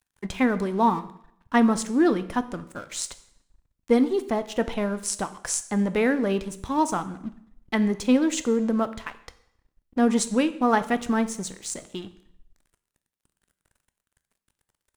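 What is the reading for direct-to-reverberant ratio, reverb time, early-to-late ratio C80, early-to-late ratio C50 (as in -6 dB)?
12.0 dB, 0.70 s, 17.5 dB, 15.0 dB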